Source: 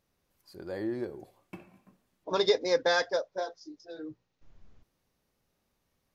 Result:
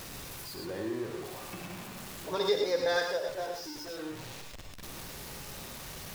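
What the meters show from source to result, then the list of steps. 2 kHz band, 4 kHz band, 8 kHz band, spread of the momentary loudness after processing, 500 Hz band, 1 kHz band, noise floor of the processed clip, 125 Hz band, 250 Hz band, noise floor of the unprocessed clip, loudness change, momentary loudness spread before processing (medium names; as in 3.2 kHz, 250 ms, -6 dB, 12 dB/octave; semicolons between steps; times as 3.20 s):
-2.0 dB, -1.5 dB, no reading, 15 LU, -1.5 dB, -1.5 dB, -45 dBFS, +5.0 dB, -0.5 dB, -79 dBFS, -5.5 dB, 21 LU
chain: jump at every zero crossing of -34.5 dBFS; gated-style reverb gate 140 ms rising, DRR 2 dB; tape noise reduction on one side only encoder only; trim -6 dB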